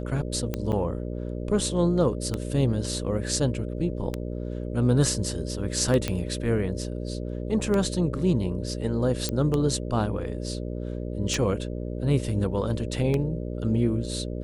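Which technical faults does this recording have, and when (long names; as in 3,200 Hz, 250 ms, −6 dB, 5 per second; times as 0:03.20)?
mains buzz 60 Hz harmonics 10 −32 dBFS
scratch tick 33 1/3 rpm −14 dBFS
0:00.72–0:00.73: drop-out 7.2 ms
0:06.08: click −12 dBFS
0:09.29: click −12 dBFS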